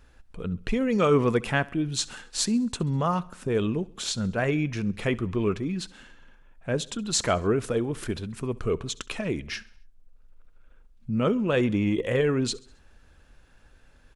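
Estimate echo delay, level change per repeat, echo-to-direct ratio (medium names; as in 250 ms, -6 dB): 67 ms, -5.5 dB, -21.0 dB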